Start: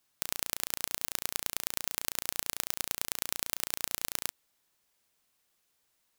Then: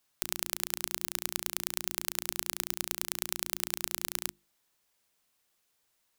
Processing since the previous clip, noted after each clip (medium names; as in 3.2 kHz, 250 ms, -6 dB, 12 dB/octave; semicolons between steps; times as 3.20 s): hum notches 50/100/150/200/250/300/350 Hz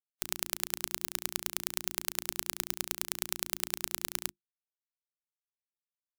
spectral contrast expander 2.5:1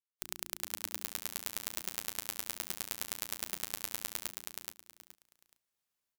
level rider gain up to 13.5 dB; on a send: feedback delay 424 ms, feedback 23%, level -3.5 dB; on the sum: trim -6 dB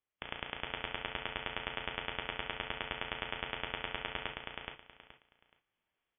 gated-style reverb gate 80 ms flat, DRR 5.5 dB; frequency inversion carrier 3.4 kHz; trim +6.5 dB